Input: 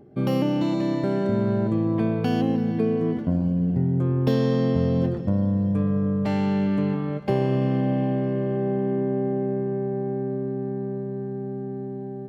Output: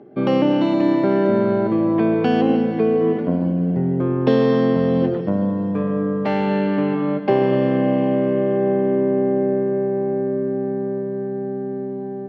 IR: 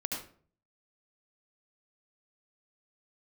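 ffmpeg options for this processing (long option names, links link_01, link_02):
-filter_complex "[0:a]highpass=250,lowpass=3100,asplit=2[link_01][link_02];[1:a]atrim=start_sample=2205,adelay=147[link_03];[link_02][link_03]afir=irnorm=-1:irlink=0,volume=-14.5dB[link_04];[link_01][link_04]amix=inputs=2:normalize=0,volume=8dB"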